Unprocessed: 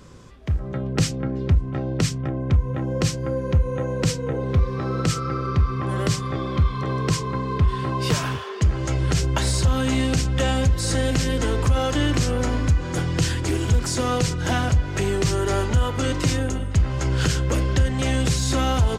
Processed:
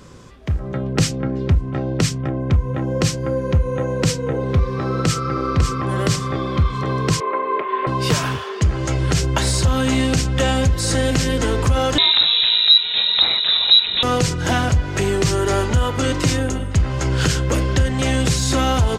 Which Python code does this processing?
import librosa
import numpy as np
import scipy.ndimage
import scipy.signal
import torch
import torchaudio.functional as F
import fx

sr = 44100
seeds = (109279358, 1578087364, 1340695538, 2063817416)

y = fx.echo_throw(x, sr, start_s=4.81, length_s=0.45, ms=550, feedback_pct=30, wet_db=-6.0)
y = fx.cabinet(y, sr, low_hz=360.0, low_slope=24, high_hz=2800.0, hz=(380.0, 610.0, 1100.0, 2200.0), db=(5, 8, 5, 6), at=(7.2, 7.87))
y = fx.freq_invert(y, sr, carrier_hz=3900, at=(11.98, 14.03))
y = fx.low_shelf(y, sr, hz=110.0, db=-4.0)
y = F.gain(torch.from_numpy(y), 4.5).numpy()